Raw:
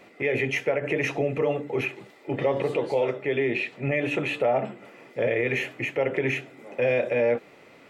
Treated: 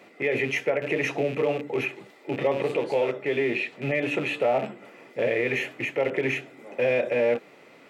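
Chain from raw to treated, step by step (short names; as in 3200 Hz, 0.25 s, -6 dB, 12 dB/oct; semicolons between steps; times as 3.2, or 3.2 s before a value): rattling part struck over -35 dBFS, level -29 dBFS; HPF 140 Hz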